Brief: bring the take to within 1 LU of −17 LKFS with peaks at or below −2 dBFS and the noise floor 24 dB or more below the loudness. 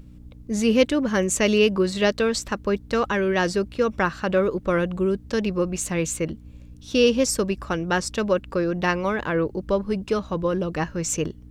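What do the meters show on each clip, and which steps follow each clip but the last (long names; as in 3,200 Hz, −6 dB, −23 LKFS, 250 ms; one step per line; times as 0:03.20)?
mains hum 60 Hz; hum harmonics up to 300 Hz; level of the hum −45 dBFS; integrated loudness −23.5 LKFS; sample peak −5.5 dBFS; target loudness −17.0 LKFS
→ hum removal 60 Hz, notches 5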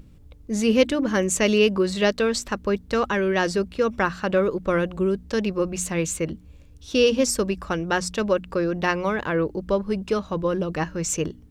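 mains hum none found; integrated loudness −23.5 LKFS; sample peak −6.0 dBFS; target loudness −17.0 LKFS
→ level +6.5 dB
brickwall limiter −2 dBFS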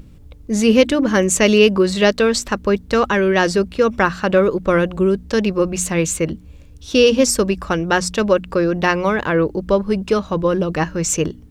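integrated loudness −17.0 LKFS; sample peak −2.0 dBFS; background noise floor −42 dBFS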